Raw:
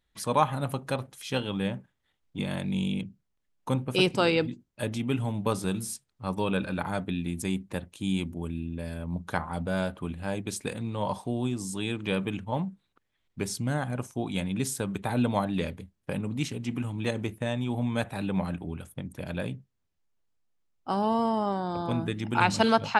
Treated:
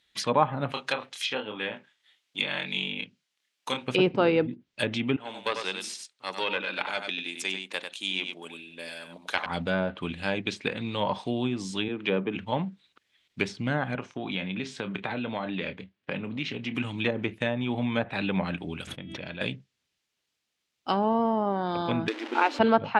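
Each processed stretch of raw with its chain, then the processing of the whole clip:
0:00.72–0:03.88: high-pass filter 720 Hz 6 dB per octave + double-tracking delay 28 ms −4 dB
0:05.16–0:09.46: high-pass filter 440 Hz + tube saturation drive 18 dB, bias 0.65 + single-tap delay 95 ms −6.5 dB
0:11.88–0:12.36: high-pass filter 150 Hz + parametric band 410 Hz +3.5 dB 0.33 octaves + multiband upward and downward expander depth 40%
0:13.95–0:16.75: double-tracking delay 27 ms −13 dB + downward compressor, threshold −29 dBFS + band-pass filter 110–2,500 Hz
0:18.87–0:19.41: high-frequency loss of the air 250 metres + tuned comb filter 330 Hz, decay 0.92 s, mix 70% + envelope flattener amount 100%
0:22.08–0:22.59: spike at every zero crossing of −15 dBFS + linear-phase brick-wall high-pass 250 Hz
whole clip: meter weighting curve D; treble cut that deepens with the level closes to 1,000 Hz, closed at −23 dBFS; level +3 dB

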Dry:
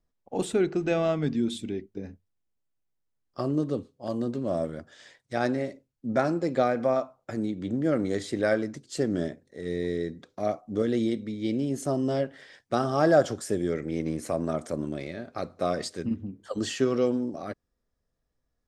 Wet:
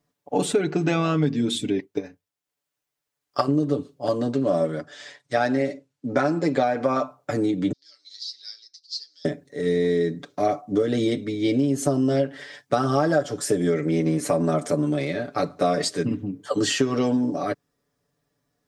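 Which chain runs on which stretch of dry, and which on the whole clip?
0:01.79–0:03.48: parametric band 170 Hz −12.5 dB 2.5 octaves + transient designer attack +9 dB, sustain −5 dB
0:04.11–0:07.02: low-pass filter 8,700 Hz + low-shelf EQ 150 Hz −6.5 dB
0:07.72–0:09.25: flat-topped band-pass 4,700 Hz, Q 3.5 + comb filter 6.7 ms, depth 62%
whole clip: high-pass filter 110 Hz; comb filter 6.9 ms, depth 77%; downward compressor 10 to 1, threshold −25 dBFS; level +8 dB

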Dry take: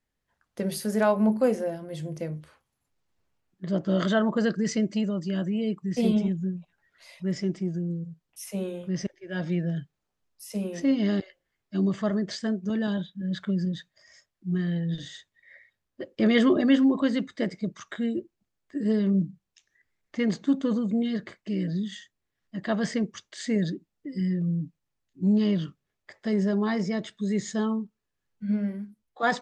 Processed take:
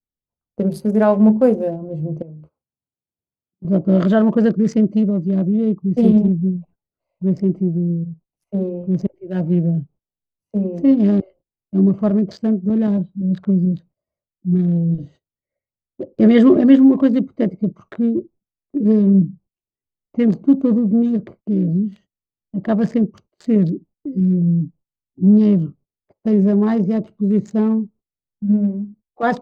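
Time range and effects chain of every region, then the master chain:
0:02.22–0:03.65: high-pass filter 93 Hz + downward compressor 16 to 1, threshold −43 dBFS
whole clip: adaptive Wiener filter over 25 samples; noise gate −53 dBFS, range −22 dB; tilt shelving filter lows +7 dB, about 1,100 Hz; level +4.5 dB

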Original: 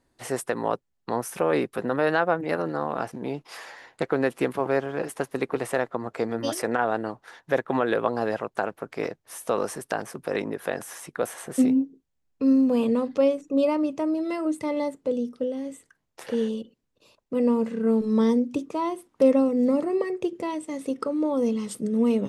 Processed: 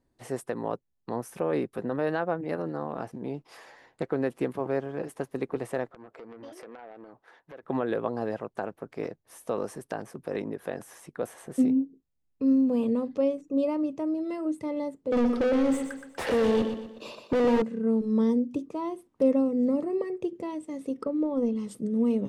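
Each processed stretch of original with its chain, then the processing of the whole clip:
0:05.92–0:07.63: bass and treble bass −11 dB, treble −9 dB + downward compressor 4 to 1, threshold −34 dBFS + saturating transformer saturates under 1,700 Hz
0:15.12–0:17.62: high-pass filter 100 Hz 24 dB per octave + mid-hump overdrive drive 35 dB, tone 2,700 Hz, clips at −12.5 dBFS + repeating echo 121 ms, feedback 40%, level −8 dB
0:21.03–0:21.56: high-shelf EQ 5,300 Hz −10 dB + transient designer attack +7 dB, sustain −2 dB
whole clip: tilt shelving filter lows +4.5 dB, about 660 Hz; notch filter 1,400 Hz, Q 25; level −6 dB

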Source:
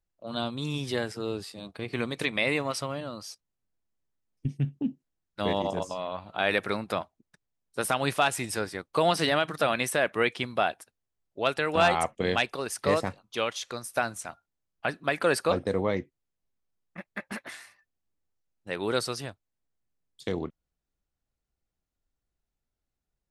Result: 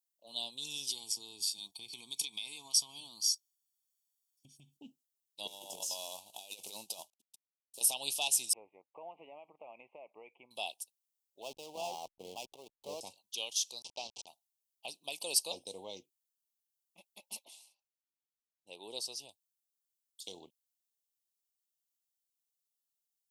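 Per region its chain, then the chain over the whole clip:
0:00.90–0:04.77: comb filter 0.9 ms, depth 92% + downward compressor 5 to 1, threshold −31 dBFS + parametric band 6,600 Hz +3.5 dB 2.6 octaves
0:05.47–0:07.81: variable-slope delta modulation 64 kbit/s + compressor whose output falls as the input rises −32 dBFS, ratio −0.5
0:08.53–0:10.51: low-shelf EQ 260 Hz −11 dB + downward compressor 4 to 1, threshold −26 dBFS + Butterworth low-pass 2,300 Hz 72 dB per octave
0:11.42–0:13.01: low-pass filter 1,300 Hz + slack as between gear wheels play −32.5 dBFS + level that may fall only so fast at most 63 dB per second
0:13.82–0:14.27: hold until the input has moved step −30 dBFS + low-pass filter 4,900 Hz 24 dB per octave
0:17.45–0:19.29: high-pass filter 460 Hz 6 dB per octave + spectral tilt −3.5 dB per octave
whole clip: dynamic equaliser 5,500 Hz, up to +6 dB, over −53 dBFS, Q 2.4; Chebyshev band-stop filter 900–2,800 Hz, order 3; first difference; level +4.5 dB

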